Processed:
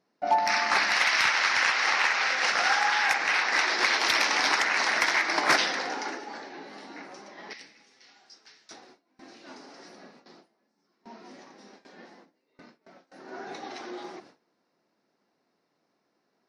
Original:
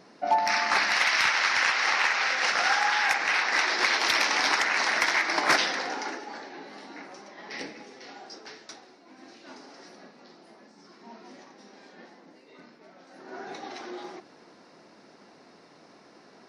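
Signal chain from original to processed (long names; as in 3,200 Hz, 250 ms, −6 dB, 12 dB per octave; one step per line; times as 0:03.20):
noise gate with hold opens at −41 dBFS
0:07.53–0:08.71: guitar amp tone stack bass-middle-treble 5-5-5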